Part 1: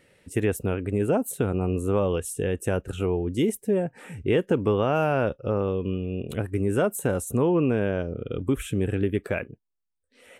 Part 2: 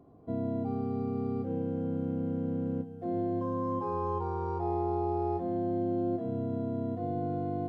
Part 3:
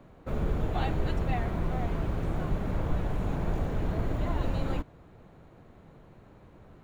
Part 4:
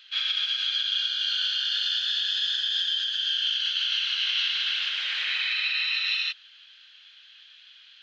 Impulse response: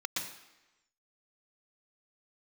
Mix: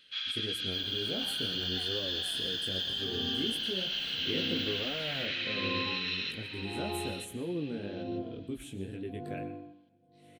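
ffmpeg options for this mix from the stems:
-filter_complex "[0:a]equalizer=f=250:t=o:w=0.67:g=6,equalizer=f=1k:t=o:w=0.67:g=-10,equalizer=f=4k:t=o:w=0.67:g=12,equalizer=f=10k:t=o:w=0.67:g=7,flanger=delay=17:depth=4.9:speed=2,volume=-14.5dB,asplit=2[a][b];[b]volume=-14.5dB[c];[1:a]flanger=delay=3.1:depth=8.7:regen=-65:speed=0.4:shape=triangular,aeval=exprs='val(0)*pow(10,-28*(0.5-0.5*cos(2*PI*0.82*n/s))/20)':c=same,adelay=2050,volume=-2.5dB,asplit=3[d][e][f];[e]volume=-11.5dB[g];[f]volume=-18dB[h];[2:a]aemphasis=mode=production:type=riaa,adelay=450,volume=-17.5dB[i];[3:a]volume=-8.5dB,asplit=2[j][k];[k]volume=-8dB[l];[4:a]atrim=start_sample=2205[m];[c][g]amix=inputs=2:normalize=0[n];[n][m]afir=irnorm=-1:irlink=0[o];[h][l]amix=inputs=2:normalize=0,aecho=0:1:933|1866|2799:1|0.19|0.0361[p];[a][d][i][j][o][p]amix=inputs=6:normalize=0"

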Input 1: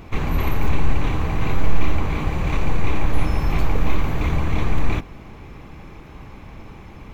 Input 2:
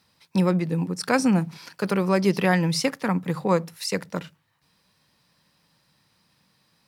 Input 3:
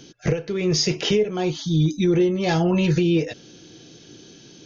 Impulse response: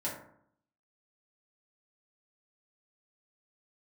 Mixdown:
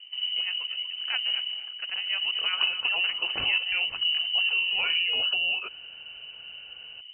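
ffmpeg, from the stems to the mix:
-filter_complex "[0:a]alimiter=limit=-14.5dB:level=0:latency=1:release=91,bandpass=f=160:t=q:w=2:csg=0,volume=1dB[a];[1:a]volume=-11.5dB,asplit=2[b][c];[c]volume=-13dB[d];[2:a]acompressor=threshold=-25dB:ratio=6,adelay=2350,volume=0.5dB[e];[d]aecho=0:1:238:1[f];[a][b][e][f]amix=inputs=4:normalize=0,lowpass=f=2.6k:t=q:w=0.5098,lowpass=f=2.6k:t=q:w=0.6013,lowpass=f=2.6k:t=q:w=0.9,lowpass=f=2.6k:t=q:w=2.563,afreqshift=-3100"

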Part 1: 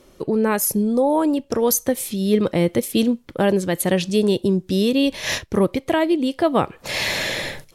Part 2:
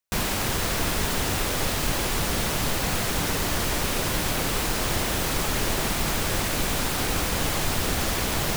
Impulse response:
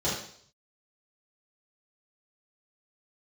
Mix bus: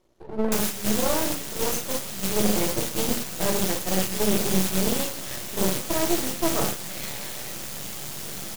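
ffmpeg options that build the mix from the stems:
-filter_complex "[0:a]volume=-11dB,asplit=2[a][b];[b]volume=-8dB[c];[1:a]highpass=170,highshelf=f=3.6k:g=12,acrossover=split=240[d][e];[e]acompressor=threshold=-24dB:ratio=6[f];[d][f]amix=inputs=2:normalize=0,adelay=400,volume=0.5dB,asplit=2[g][h];[h]volume=-13dB[i];[2:a]atrim=start_sample=2205[j];[c][i]amix=inputs=2:normalize=0[k];[k][j]afir=irnorm=-1:irlink=0[l];[a][g][l]amix=inputs=3:normalize=0,agate=range=-7dB:threshold=-21dB:ratio=16:detection=peak,aeval=exprs='max(val(0),0)':c=same"

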